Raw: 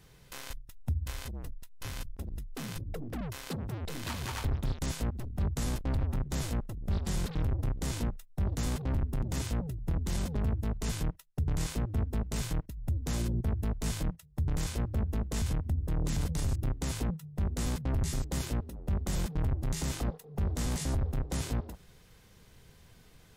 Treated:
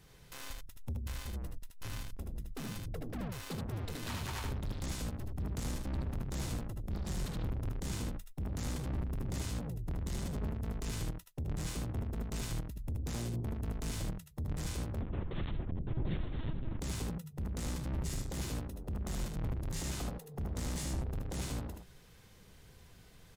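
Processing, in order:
soft clipping −31.5 dBFS, distortion −11 dB
ambience of single reflections 67 ms −15.5 dB, 77 ms −4 dB
0:15.01–0:16.79: linear-prediction vocoder at 8 kHz pitch kept
level −2 dB

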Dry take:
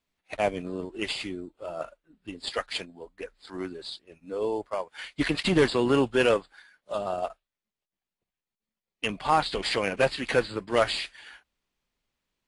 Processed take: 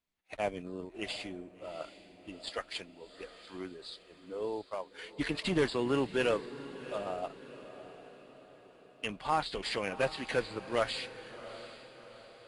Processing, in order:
feedback delay with all-pass diffusion 722 ms, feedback 49%, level −14 dB
level −7.5 dB

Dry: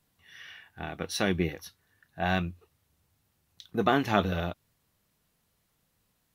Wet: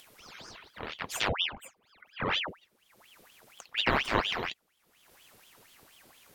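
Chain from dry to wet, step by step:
0:01.28–0:02.48: expanding power law on the bin magnitudes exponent 1.8
upward compression, threshold −39 dBFS
ring modulator whose carrier an LFO sweeps 1,800 Hz, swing 85%, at 4.2 Hz

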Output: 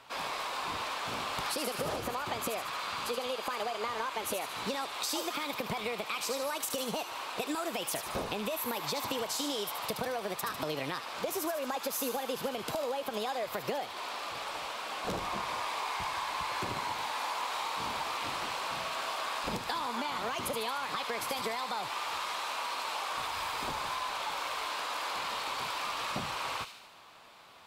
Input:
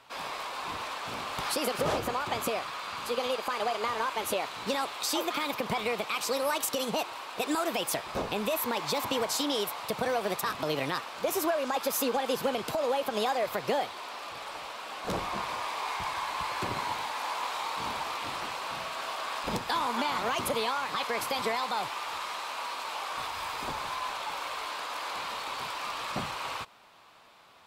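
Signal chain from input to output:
downward compressor, threshold −33 dBFS, peak gain reduction 9.5 dB
on a send: delay with a high-pass on its return 75 ms, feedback 58%, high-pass 2,800 Hz, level −6 dB
on the sum: level +1.5 dB

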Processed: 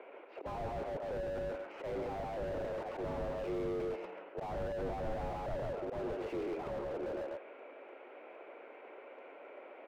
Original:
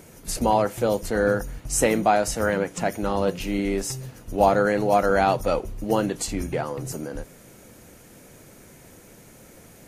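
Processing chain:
volume swells 267 ms
in parallel at +2 dB: brickwall limiter −17 dBFS, peak gain reduction 9 dB
on the sum: parametric band 1,700 Hz −9.5 dB 0.26 octaves
on a send: repeating echo 138 ms, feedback 17%, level −4 dB
on the sum: single-sideband voice off tune +56 Hz 340–2,500 Hz
slew-rate limiting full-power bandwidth 16 Hz
level −6.5 dB

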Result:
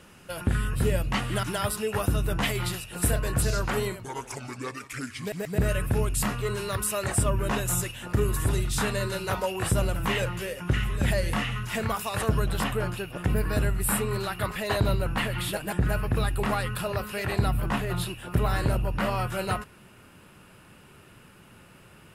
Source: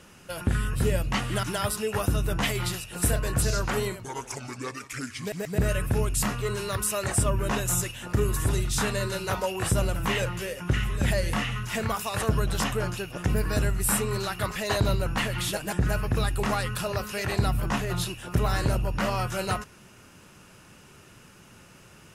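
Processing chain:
parametric band 6,100 Hz −5 dB 0.6 octaves, from 0:12.48 −12 dB

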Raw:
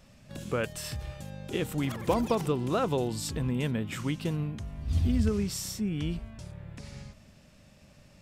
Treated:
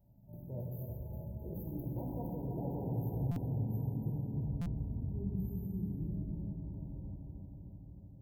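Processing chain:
source passing by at 0:03.51, 21 m/s, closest 7.1 metres
bass and treble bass +8 dB, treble +13 dB
brickwall limiter −24.5 dBFS, peak gain reduction 11 dB
reversed playback
downward compressor 5 to 1, threshold −46 dBFS, peak gain reduction 16 dB
reversed playback
linear-phase brick-wall band-stop 1,000–13,000 Hz
feedback echo with a low-pass in the loop 308 ms, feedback 74%, low-pass 1,900 Hz, level −6.5 dB
convolution reverb RT60 2.6 s, pre-delay 4 ms, DRR −2.5 dB
buffer that repeats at 0:03.31/0:04.61, samples 256, times 8
level +3 dB

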